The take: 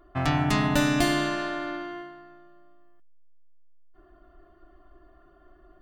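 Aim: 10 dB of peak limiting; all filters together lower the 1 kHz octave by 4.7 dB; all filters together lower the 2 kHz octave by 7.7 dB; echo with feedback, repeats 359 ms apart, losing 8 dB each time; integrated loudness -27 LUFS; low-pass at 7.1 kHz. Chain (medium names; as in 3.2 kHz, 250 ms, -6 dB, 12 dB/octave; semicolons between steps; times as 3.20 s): low-pass 7.1 kHz; peaking EQ 1 kHz -4.5 dB; peaking EQ 2 kHz -8.5 dB; peak limiter -22 dBFS; feedback delay 359 ms, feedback 40%, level -8 dB; trim +5 dB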